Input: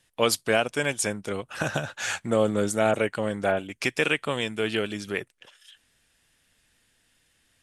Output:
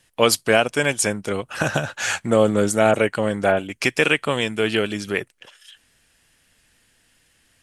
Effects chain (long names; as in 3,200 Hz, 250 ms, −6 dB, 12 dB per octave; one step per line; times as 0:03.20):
notch filter 3,600 Hz, Q 19
level +6 dB